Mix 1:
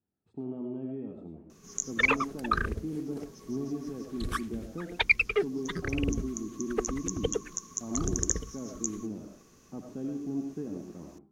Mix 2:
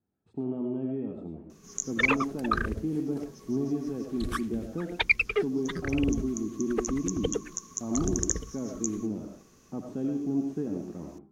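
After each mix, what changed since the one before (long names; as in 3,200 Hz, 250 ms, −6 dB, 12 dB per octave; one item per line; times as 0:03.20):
speech +5.0 dB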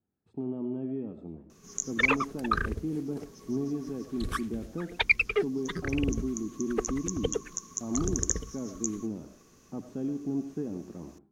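speech: send −8.5 dB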